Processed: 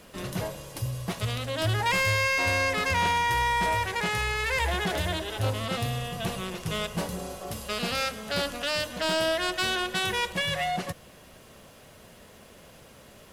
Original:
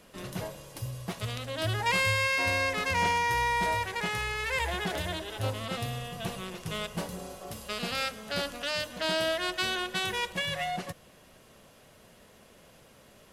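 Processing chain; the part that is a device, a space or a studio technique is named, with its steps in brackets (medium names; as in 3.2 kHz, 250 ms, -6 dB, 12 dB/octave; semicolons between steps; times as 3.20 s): open-reel tape (saturation -24.5 dBFS, distortion -14 dB; peaking EQ 73 Hz +3 dB 0.97 oct; white noise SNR 42 dB); trim +5 dB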